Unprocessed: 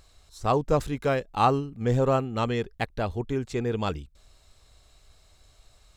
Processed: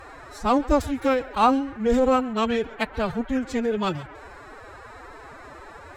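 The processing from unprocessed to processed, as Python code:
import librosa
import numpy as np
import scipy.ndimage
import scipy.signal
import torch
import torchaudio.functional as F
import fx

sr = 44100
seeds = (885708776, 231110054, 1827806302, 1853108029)

y = fx.dmg_noise_band(x, sr, seeds[0], low_hz=140.0, high_hz=1700.0, level_db=-46.0)
y = fx.echo_thinned(y, sr, ms=136, feedback_pct=23, hz=220.0, wet_db=-19)
y = fx.pitch_keep_formants(y, sr, semitones=11.5)
y = y * 10.0 ** (3.5 / 20.0)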